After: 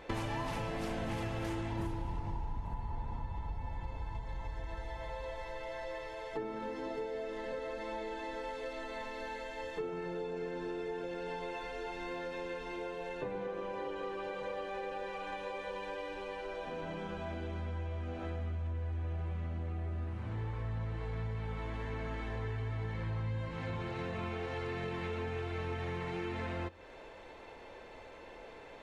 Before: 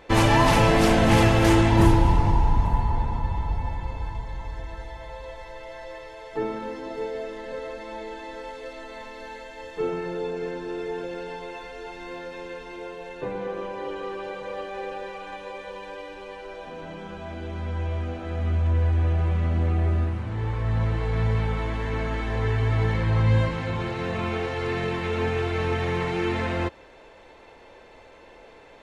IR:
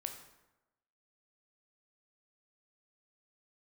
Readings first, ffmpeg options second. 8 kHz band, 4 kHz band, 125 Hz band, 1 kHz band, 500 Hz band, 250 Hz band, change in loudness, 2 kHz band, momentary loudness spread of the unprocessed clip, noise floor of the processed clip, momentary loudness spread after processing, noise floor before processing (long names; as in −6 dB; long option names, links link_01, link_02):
can't be measured, −14.5 dB, −15.0 dB, −13.5 dB, −11.0 dB, −15.0 dB, −15.0 dB, −12.5 dB, 20 LU, −51 dBFS, 5 LU, −49 dBFS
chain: -filter_complex "[0:a]acompressor=threshold=-34dB:ratio=6,asplit=2[link_01][link_02];[1:a]atrim=start_sample=2205,lowpass=4600[link_03];[link_02][link_03]afir=irnorm=-1:irlink=0,volume=-11dB[link_04];[link_01][link_04]amix=inputs=2:normalize=0,volume=-3.5dB"